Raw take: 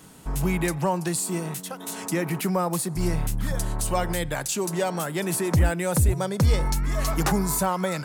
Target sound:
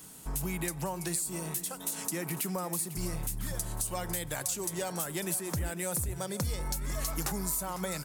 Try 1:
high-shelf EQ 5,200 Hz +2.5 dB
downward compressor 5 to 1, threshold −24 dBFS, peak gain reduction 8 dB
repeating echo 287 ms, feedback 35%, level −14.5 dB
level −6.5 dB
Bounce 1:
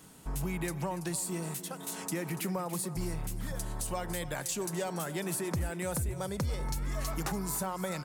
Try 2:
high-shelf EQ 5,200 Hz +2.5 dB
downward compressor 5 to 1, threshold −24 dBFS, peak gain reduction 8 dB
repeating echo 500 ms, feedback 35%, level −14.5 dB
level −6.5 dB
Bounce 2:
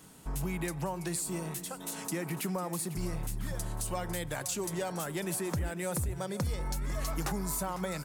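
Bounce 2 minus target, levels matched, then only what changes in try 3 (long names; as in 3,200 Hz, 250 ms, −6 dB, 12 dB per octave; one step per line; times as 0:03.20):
8,000 Hz band −2.5 dB
change: high-shelf EQ 5,200 Hz +13.5 dB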